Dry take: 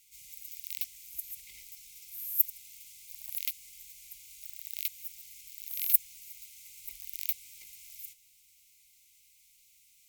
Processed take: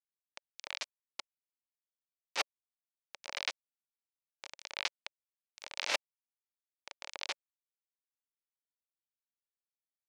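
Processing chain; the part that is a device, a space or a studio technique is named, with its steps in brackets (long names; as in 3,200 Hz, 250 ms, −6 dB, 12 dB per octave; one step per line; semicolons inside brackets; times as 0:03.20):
hand-held game console (bit reduction 4 bits; loudspeaker in its box 460–5,600 Hz, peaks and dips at 570 Hz +6 dB, 890 Hz +4 dB, 2,300 Hz +5 dB)
level +4.5 dB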